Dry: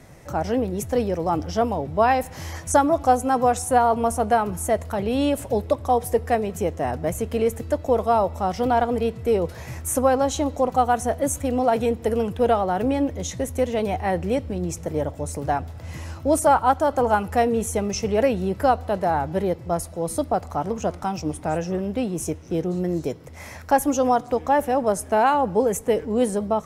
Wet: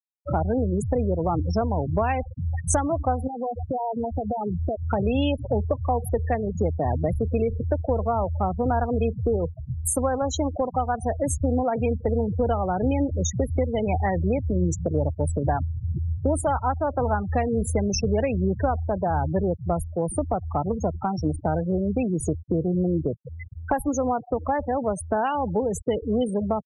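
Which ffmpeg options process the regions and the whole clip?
-filter_complex "[0:a]asettb=1/sr,asplit=3[s0][s1][s2];[s0]atrim=end=3.274[s3];[s1]atrim=start=3.27:end=4.89,asetpts=PTS-STARTPTS,afade=t=in:d=0.004:c=qsin,afade=t=out:st=1.616:d=0.004:c=qsin,lowpass=1000,acompressor=threshold=0.0355:ratio=16:attack=3.2:release=140:knee=1:detection=peak[s4];[s2]atrim=start=4.886[s5];[s3][s4]acrossfade=d=0.004:c1=hsin:c2=qsin[s6];[s6][s5]acrossfade=d=0.004:c1=qsin:c2=hsin,asettb=1/sr,asplit=3[s7][s8][s9];[s7]atrim=end=9.364[s10];[s8]atrim=start=9.36:end=11.18,asetpts=PTS-STARTPTS,afade=t=in:d=0.004:c=qsin,afade=t=out:st=1.816:d=0.004:c=qsin,lowshelf=f=170:g=-4.5,aeval=exprs='val(0)+0.00251*(sin(2*PI*50*n/s)+sin(2*PI*2*50*n/s)/2+sin(2*PI*3*50*n/s)/3+sin(2*PI*4*50*n/s)/4+sin(2*PI*5*50*n/s)/5)':c=same[s11];[s9]atrim=start=11.176[s12];[s10][s11]acrossfade=d=0.004:c1=hsin:c2=qsin[s13];[s13][s12]acrossfade=d=0.004:c1=qsin:c2=hsin,afftfilt=real='re*gte(hypot(re,im),0.0708)':imag='im*gte(hypot(re,im),0.0708)':win_size=1024:overlap=0.75,equalizer=f=2900:t=o:w=0.91:g=8,acrossover=split=130[s14][s15];[s15]acompressor=threshold=0.0251:ratio=5[s16];[s14][s16]amix=inputs=2:normalize=0,volume=2.66"

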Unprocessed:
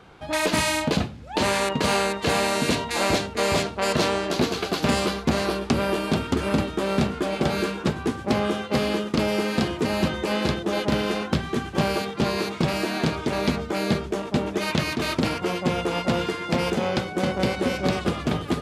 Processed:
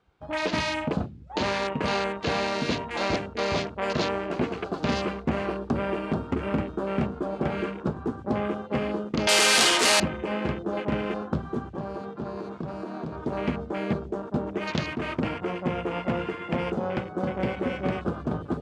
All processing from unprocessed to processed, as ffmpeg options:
-filter_complex "[0:a]asettb=1/sr,asplit=3[s0][s1][s2];[s0]atrim=end=9.274[s3];[s1]atrim=start=9.27:end=10,asetpts=PTS-STARTPTS,afade=t=in:d=0.004:c=qsin,afade=t=out:st=0.726:d=0.004:c=qsin,asplit=2[s4][s5];[s5]highpass=f=720:p=1,volume=35.5,asoftclip=type=tanh:threshold=0.282[s6];[s4][s6]amix=inputs=2:normalize=0,lowpass=f=6100:p=1,volume=0.501,aemphasis=mode=production:type=riaa[s7];[s2]atrim=start=9.996[s8];[s3][s7]acrossfade=d=0.004:c1=hsin:c2=qsin[s9];[s9][s8]acrossfade=d=0.004:c1=qsin:c2=hsin,asettb=1/sr,asplit=3[s10][s11][s12];[s10]atrim=end=11.624[s13];[s11]atrim=start=11.62:end=13.23,asetpts=PTS-STARTPTS,afade=t=in:d=0.004:c=qsin,afade=t=out:st=1.606:d=0.004:c=qsin,highshelf=f=9200:g=-6.5,acompressor=threshold=0.0501:ratio=3:attack=3.2:release=140:knee=1:detection=peak[s14];[s12]atrim=start=13.226[s15];[s13][s14]acrossfade=d=0.004:c1=hsin:c2=qsin[s16];[s16][s15]acrossfade=d=0.004:c1=qsin:c2=hsin,afwtdn=0.0282,lowpass=f=9400:w=0.5412,lowpass=f=9400:w=1.3066,volume=0.631"

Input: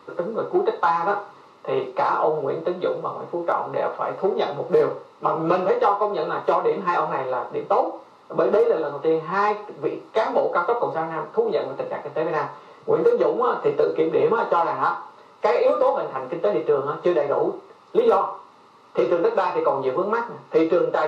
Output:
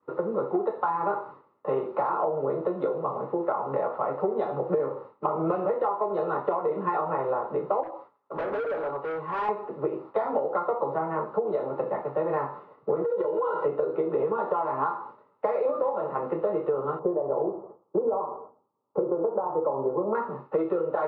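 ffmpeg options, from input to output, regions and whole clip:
-filter_complex "[0:a]asettb=1/sr,asplit=3[s0][s1][s2];[s0]atrim=end=7.834[s3];[s1]atrim=start=7.83:end=9.49,asetpts=PTS-STARTPTS,afade=t=in:d=0.004:c=qsin,afade=t=out:st=1.656:d=0.004:c=qsin,asoftclip=type=hard:threshold=0.0596,lowshelf=f=380:g=-10,aecho=1:1:7.1:0.3,atrim=end_sample=73206[s4];[s2]atrim=start=9.486[s5];[s3][s4]acrossfade=d=0.004:c1=hsin:c2=qsin[s6];[s6][s5]acrossfade=d=0.004:c1=qsin:c2=hsin,asettb=1/sr,asplit=3[s7][s8][s9];[s7]atrim=end=13.044[s10];[s8]atrim=start=13.04:end=13.66,asetpts=PTS-STARTPTS,afade=t=in:d=0.004:c=qsin,afade=t=out:st=0.616:d=0.004:c=qsin,aemphasis=mode=production:type=50fm,aecho=1:1:2.1:0.92,atrim=end_sample=27342,acompressor=threshold=0.0891:ratio=6:attack=3.2:release=140:knee=1:detection=peak[s11];[s9]atrim=start=13.656[s12];[s10][s11]acrossfade=d=0.004:c1=hsin:c2=qsin[s13];[s13][s12]acrossfade=d=0.004:c1=qsin:c2=hsin,asettb=1/sr,asplit=3[s14][s15][s16];[s14]atrim=end=16.994[s17];[s15]atrim=start=16.99:end=20.15,asetpts=PTS-STARTPTS,afade=t=in:d=0.004:c=qsin,afade=t=out:st=3.156:d=0.004:c=qsin,lowpass=f=1000:w=0.5412,lowpass=f=1000:w=1.3066,aecho=1:1:111|222|333|444:0.0891|0.0472|0.025|0.0133,atrim=end_sample=139356[s18];[s16]atrim=start=20.146[s19];[s17][s18]acrossfade=d=0.004:c1=hsin:c2=qsin[s20];[s20][s19]acrossfade=d=0.004:c1=qsin:c2=hsin,agate=range=0.0224:threshold=0.0126:ratio=3:detection=peak,lowpass=1300,acompressor=threshold=0.0631:ratio=6,volume=1.12"

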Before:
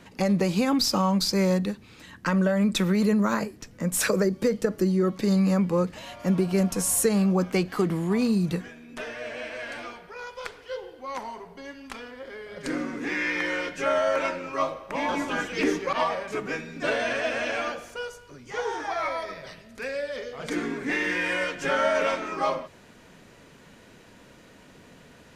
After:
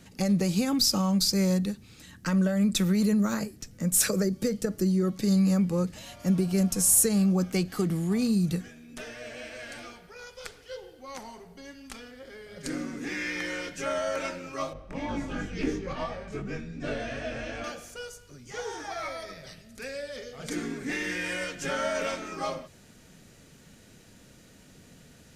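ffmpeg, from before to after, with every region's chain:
-filter_complex "[0:a]asettb=1/sr,asplit=3[s0][s1][s2];[s0]atrim=end=14.734[s3];[s1]atrim=start=14.73:end=17.64,asetpts=PTS-STARTPTS,afade=t=in:d=0.004:c=qsin,afade=t=out:st=2.906:d=0.004:c=qsin,aemphasis=mode=reproduction:type=bsi,flanger=delay=20:depth=2.9:speed=2.8[s4];[s2]atrim=start=17.636[s5];[s3][s4]acrossfade=d=0.004:c1=hsin:c2=qsin[s6];[s6][s5]acrossfade=d=0.004:c1=qsin:c2=hsin,bass=f=250:g=8,treble=f=4000:g=11,bandreject=f=1000:w=7.3,volume=0.473"

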